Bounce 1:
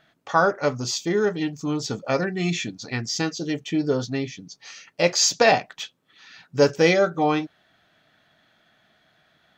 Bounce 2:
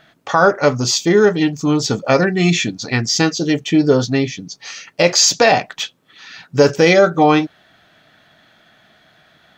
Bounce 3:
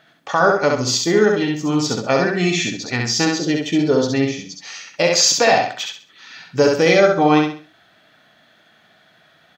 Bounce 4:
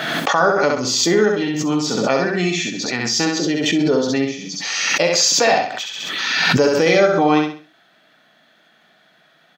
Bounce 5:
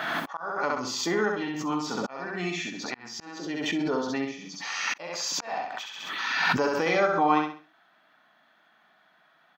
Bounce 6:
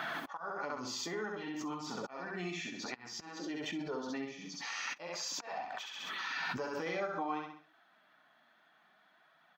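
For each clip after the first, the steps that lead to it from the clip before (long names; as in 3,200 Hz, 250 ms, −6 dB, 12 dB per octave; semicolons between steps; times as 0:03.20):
boost into a limiter +11 dB; level −1 dB
high-pass filter 140 Hz 6 dB per octave; on a send: repeating echo 66 ms, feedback 33%, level −3 dB; on the sum: level −3.5 dB
high-pass filter 150 Hz 24 dB per octave; background raised ahead of every attack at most 27 dB per second; level −1.5 dB
octave-band graphic EQ 125/500/1,000/4,000/8,000 Hz −6/−5/+10/−3/−6 dB; volume swells 409 ms; level −9 dB
downward compressor 2.5 to 1, threshold −34 dBFS, peak gain reduction 11 dB; flanger 0.53 Hz, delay 0.8 ms, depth 8 ms, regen −42%; level −1 dB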